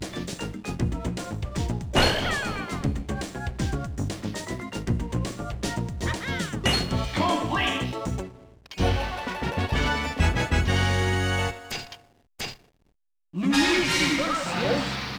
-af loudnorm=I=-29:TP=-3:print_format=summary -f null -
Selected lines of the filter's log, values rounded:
Input Integrated:    -26.1 LUFS
Input True Peak:      -8.3 dBTP
Input LRA:             2.6 LU
Input Threshold:     -36.4 LUFS